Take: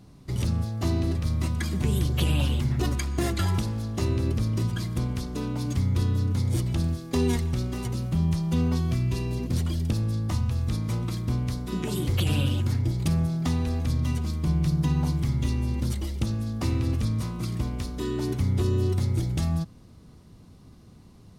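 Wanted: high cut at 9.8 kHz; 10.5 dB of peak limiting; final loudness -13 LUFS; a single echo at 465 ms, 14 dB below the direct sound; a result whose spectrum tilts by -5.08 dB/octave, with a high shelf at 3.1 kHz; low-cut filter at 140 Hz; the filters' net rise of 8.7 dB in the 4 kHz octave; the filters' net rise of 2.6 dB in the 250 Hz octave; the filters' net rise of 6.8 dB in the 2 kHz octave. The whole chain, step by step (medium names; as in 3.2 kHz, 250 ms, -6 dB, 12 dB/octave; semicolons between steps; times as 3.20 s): high-pass 140 Hz; low-pass 9.8 kHz; peaking EQ 250 Hz +4.5 dB; peaking EQ 2 kHz +4 dB; treble shelf 3.1 kHz +8.5 dB; peaking EQ 4 kHz +3.5 dB; peak limiter -19 dBFS; delay 465 ms -14 dB; trim +16 dB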